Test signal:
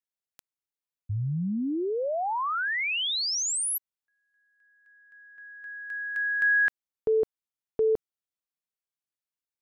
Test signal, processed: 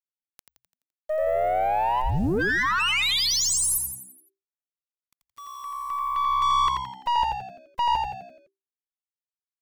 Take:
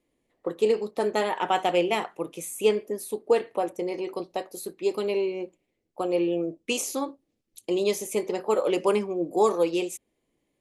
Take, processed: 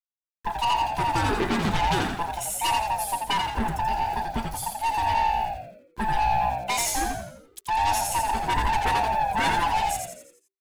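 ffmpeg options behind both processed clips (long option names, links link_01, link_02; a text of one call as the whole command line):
ffmpeg -i in.wav -filter_complex "[0:a]afftfilt=real='real(if(lt(b,1008),b+24*(1-2*mod(floor(b/24),2)),b),0)':imag='imag(if(lt(b,1008),b+24*(1-2*mod(floor(b/24),2)),b),0)':win_size=2048:overlap=0.75,aeval=exprs='0.106*(abs(mod(val(0)/0.106+3,4)-2)-1)':channel_layout=same,aeval=exprs='(tanh(22.4*val(0)+0.2)-tanh(0.2))/22.4':channel_layout=same,aeval=exprs='val(0)*gte(abs(val(0)),0.00355)':channel_layout=same,asplit=7[link_01][link_02][link_03][link_04][link_05][link_06][link_07];[link_02]adelay=85,afreqshift=-65,volume=-4dB[link_08];[link_03]adelay=170,afreqshift=-130,volume=-10.4dB[link_09];[link_04]adelay=255,afreqshift=-195,volume=-16.8dB[link_10];[link_05]adelay=340,afreqshift=-260,volume=-23.1dB[link_11];[link_06]adelay=425,afreqshift=-325,volume=-29.5dB[link_12];[link_07]adelay=510,afreqshift=-390,volume=-35.9dB[link_13];[link_01][link_08][link_09][link_10][link_11][link_12][link_13]amix=inputs=7:normalize=0,volume=6dB" out.wav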